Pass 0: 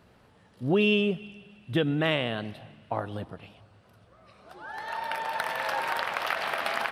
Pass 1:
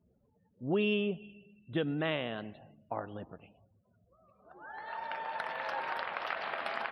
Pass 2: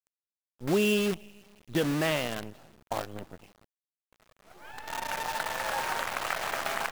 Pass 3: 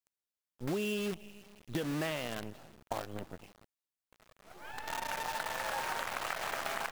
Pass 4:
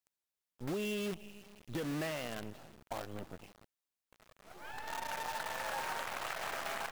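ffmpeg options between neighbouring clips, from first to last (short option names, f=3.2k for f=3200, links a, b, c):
-af "highshelf=f=3.7k:g=-7,afftdn=nr=28:nf=-52,equalizer=f=110:w=1.8:g=-5.5,volume=-6dB"
-af "acrusher=bits=7:dc=4:mix=0:aa=0.000001,volume=4.5dB"
-af "acompressor=threshold=-33dB:ratio=4"
-af "asoftclip=type=tanh:threshold=-31dB"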